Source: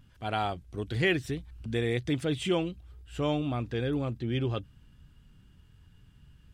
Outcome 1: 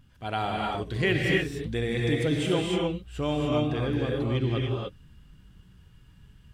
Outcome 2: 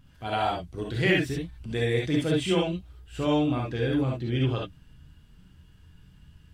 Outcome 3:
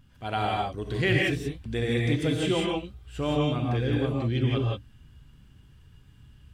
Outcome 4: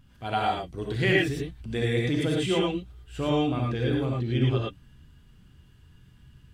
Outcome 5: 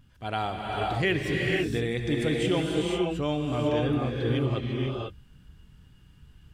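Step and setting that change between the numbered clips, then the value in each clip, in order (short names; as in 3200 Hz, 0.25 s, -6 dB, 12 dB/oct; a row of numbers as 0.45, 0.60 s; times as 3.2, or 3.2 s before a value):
non-linear reverb, gate: 320, 90, 200, 130, 530 ms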